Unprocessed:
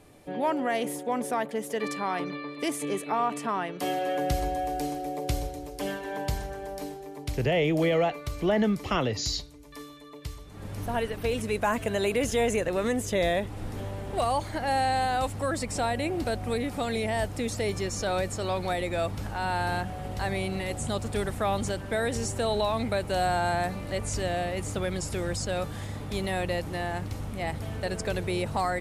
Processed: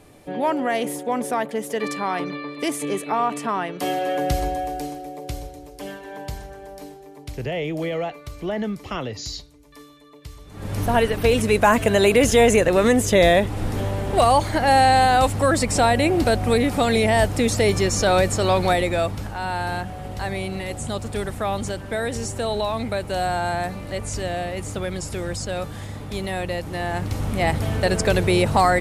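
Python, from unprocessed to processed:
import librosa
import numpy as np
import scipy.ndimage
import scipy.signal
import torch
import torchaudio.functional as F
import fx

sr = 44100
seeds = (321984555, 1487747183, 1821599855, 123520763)

y = fx.gain(x, sr, db=fx.line((4.47, 5.0), (5.12, -2.0), (10.26, -2.0), (10.75, 10.5), (18.69, 10.5), (19.34, 2.5), (26.62, 2.5), (27.33, 11.0)))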